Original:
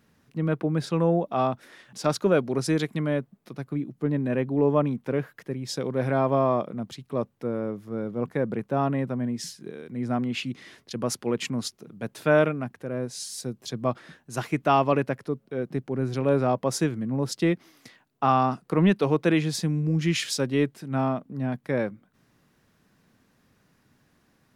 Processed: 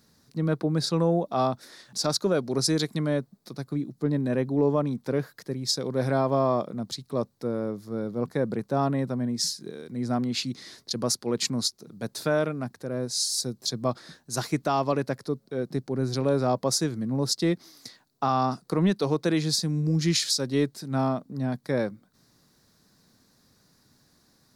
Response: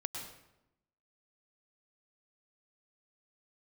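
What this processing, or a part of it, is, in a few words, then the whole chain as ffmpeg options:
over-bright horn tweeter: -af "highshelf=f=3.5k:t=q:w=3:g=6.5,alimiter=limit=-14dB:level=0:latency=1:release=252"

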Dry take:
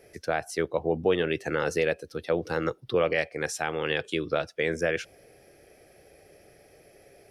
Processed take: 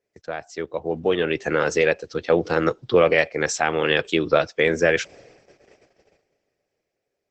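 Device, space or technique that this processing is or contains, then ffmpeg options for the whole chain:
video call: -filter_complex "[0:a]asplit=3[a][b][c];[a]afade=t=out:st=1.62:d=0.02[d];[b]lowshelf=f=410:g=-2.5,afade=t=in:st=1.62:d=0.02,afade=t=out:st=2.13:d=0.02[e];[c]afade=t=in:st=2.13:d=0.02[f];[d][e][f]amix=inputs=3:normalize=0,highpass=f=110:p=1,dynaudnorm=f=230:g=11:m=16dB,agate=range=-22dB:threshold=-43dB:ratio=16:detection=peak,volume=-2.5dB" -ar 48000 -c:a libopus -b:a 12k

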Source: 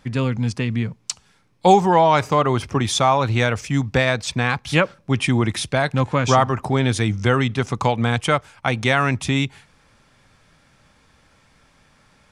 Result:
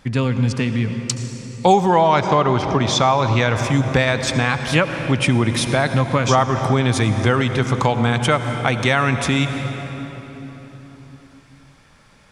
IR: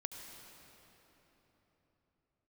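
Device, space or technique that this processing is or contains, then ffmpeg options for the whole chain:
ducked reverb: -filter_complex "[0:a]asplit=3[a][b][c];[1:a]atrim=start_sample=2205[d];[b][d]afir=irnorm=-1:irlink=0[e];[c]apad=whole_len=543055[f];[e][f]sidechaincompress=threshold=-19dB:ratio=8:attack=24:release=222,volume=5.5dB[g];[a][g]amix=inputs=2:normalize=0,asettb=1/sr,asplit=3[h][i][j];[h]atrim=end=2.144[k];[i]atrim=start=2.14:end=3.56,asetpts=PTS-STARTPTS,afade=t=in:d=0.004:c=qsin,afade=t=out:st=1.416:d=0.004:c=qsin,lowpass=f=6.6k:w=0.5412,lowpass=f=6.6k:w=1.3066[l];[j]atrim=start=3.556[m];[k][l]acrossfade=d=0.004:c1=hsin:c2=qsin[n];[n][m]acrossfade=d=0.004:c1=qsin:c2=hsin,volume=-3.5dB"

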